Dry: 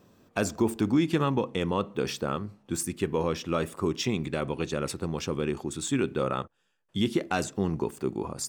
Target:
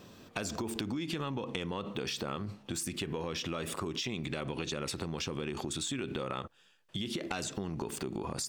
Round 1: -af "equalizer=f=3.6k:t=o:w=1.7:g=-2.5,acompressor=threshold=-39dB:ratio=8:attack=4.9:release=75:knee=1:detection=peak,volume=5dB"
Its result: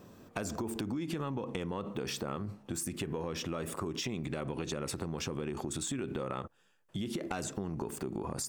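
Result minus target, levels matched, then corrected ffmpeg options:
4000 Hz band -4.0 dB
-af "equalizer=f=3.6k:t=o:w=1.7:g=7.5,acompressor=threshold=-39dB:ratio=8:attack=4.9:release=75:knee=1:detection=peak,volume=5dB"

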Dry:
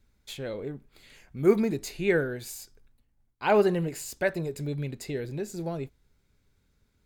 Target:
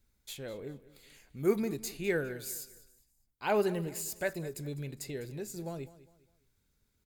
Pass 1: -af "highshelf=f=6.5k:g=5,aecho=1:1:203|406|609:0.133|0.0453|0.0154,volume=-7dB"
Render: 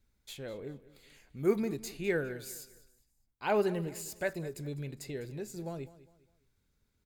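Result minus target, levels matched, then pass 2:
8000 Hz band -4.0 dB
-af "highshelf=f=6.5k:g=12,aecho=1:1:203|406|609:0.133|0.0453|0.0154,volume=-7dB"

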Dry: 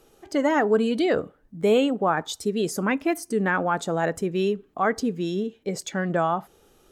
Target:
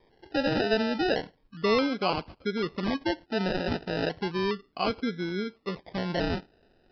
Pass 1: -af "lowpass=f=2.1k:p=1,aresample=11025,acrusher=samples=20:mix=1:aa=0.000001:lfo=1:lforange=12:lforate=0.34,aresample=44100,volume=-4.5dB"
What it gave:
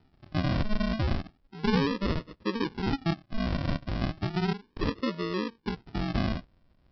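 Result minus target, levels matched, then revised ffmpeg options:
decimation with a swept rate: distortion +20 dB
-af "lowpass=f=2.1k:p=1,aresample=11025,acrusher=samples=8:mix=1:aa=0.000001:lfo=1:lforange=4.8:lforate=0.34,aresample=44100,volume=-4.5dB"

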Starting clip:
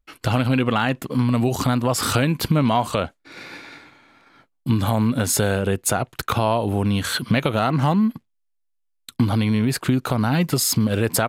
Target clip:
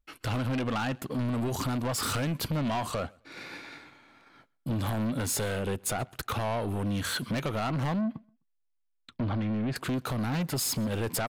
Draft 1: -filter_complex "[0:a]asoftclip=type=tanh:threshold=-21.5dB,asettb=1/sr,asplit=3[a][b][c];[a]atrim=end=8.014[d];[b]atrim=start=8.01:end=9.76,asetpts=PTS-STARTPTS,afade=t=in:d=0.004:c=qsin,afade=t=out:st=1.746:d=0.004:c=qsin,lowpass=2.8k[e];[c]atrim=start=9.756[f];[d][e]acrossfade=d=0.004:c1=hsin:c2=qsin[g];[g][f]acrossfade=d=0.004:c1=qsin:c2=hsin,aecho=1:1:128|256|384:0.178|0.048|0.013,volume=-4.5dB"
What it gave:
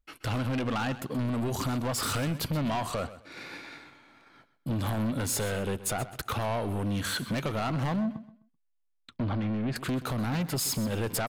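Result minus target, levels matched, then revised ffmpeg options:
echo-to-direct +12 dB
-filter_complex "[0:a]asoftclip=type=tanh:threshold=-21.5dB,asettb=1/sr,asplit=3[a][b][c];[a]atrim=end=8.014[d];[b]atrim=start=8.01:end=9.76,asetpts=PTS-STARTPTS,afade=t=in:d=0.004:c=qsin,afade=t=out:st=1.746:d=0.004:c=qsin,lowpass=2.8k[e];[c]atrim=start=9.756[f];[d][e]acrossfade=d=0.004:c1=hsin:c2=qsin[g];[g][f]acrossfade=d=0.004:c1=qsin:c2=hsin,aecho=1:1:128|256:0.0447|0.0121,volume=-4.5dB"

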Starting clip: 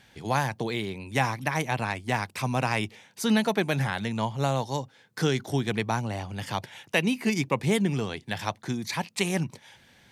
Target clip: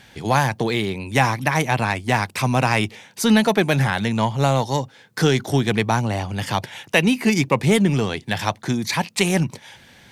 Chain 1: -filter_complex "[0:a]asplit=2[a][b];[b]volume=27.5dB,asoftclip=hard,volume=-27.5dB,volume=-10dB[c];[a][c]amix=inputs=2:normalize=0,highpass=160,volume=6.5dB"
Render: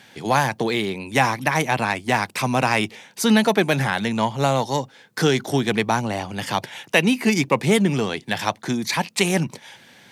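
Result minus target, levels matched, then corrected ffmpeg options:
125 Hz band -3.5 dB
-filter_complex "[0:a]asplit=2[a][b];[b]volume=27.5dB,asoftclip=hard,volume=-27.5dB,volume=-10dB[c];[a][c]amix=inputs=2:normalize=0,volume=6.5dB"

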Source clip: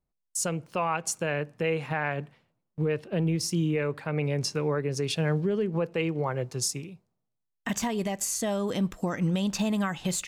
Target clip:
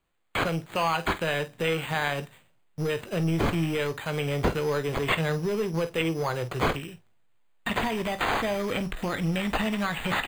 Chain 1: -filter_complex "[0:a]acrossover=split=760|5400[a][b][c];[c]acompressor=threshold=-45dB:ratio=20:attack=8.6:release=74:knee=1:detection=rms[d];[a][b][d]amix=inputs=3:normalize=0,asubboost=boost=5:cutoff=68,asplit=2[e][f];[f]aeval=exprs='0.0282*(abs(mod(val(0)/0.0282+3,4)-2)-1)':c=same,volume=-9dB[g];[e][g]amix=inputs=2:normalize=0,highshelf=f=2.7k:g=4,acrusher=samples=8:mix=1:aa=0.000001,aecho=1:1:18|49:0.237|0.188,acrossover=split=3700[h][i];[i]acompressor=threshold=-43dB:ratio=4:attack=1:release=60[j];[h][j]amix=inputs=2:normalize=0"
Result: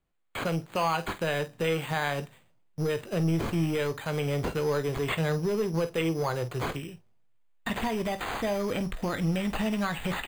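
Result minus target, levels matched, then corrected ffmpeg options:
2000 Hz band -3.0 dB
-filter_complex "[0:a]acrossover=split=760|5400[a][b][c];[c]acompressor=threshold=-45dB:ratio=20:attack=8.6:release=74:knee=1:detection=rms[d];[a][b][d]amix=inputs=3:normalize=0,asubboost=boost=5:cutoff=68,asplit=2[e][f];[f]aeval=exprs='0.0282*(abs(mod(val(0)/0.0282+3,4)-2)-1)':c=same,volume=-9dB[g];[e][g]amix=inputs=2:normalize=0,highshelf=f=2.7k:g=13,acrusher=samples=8:mix=1:aa=0.000001,aecho=1:1:18|49:0.237|0.188,acrossover=split=3700[h][i];[i]acompressor=threshold=-43dB:ratio=4:attack=1:release=60[j];[h][j]amix=inputs=2:normalize=0"

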